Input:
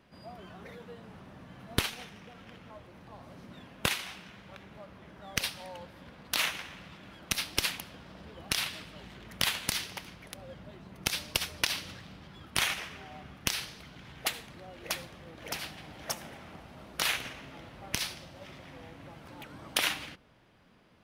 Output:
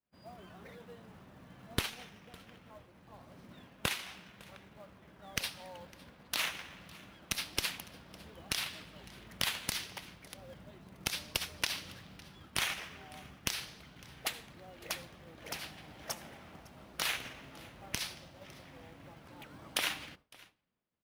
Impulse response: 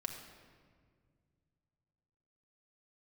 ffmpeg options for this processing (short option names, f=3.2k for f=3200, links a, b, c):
-af "aecho=1:1:556:0.075,agate=range=-33dB:threshold=-48dB:ratio=3:detection=peak,acrusher=bits=5:mode=log:mix=0:aa=0.000001,volume=-4.5dB"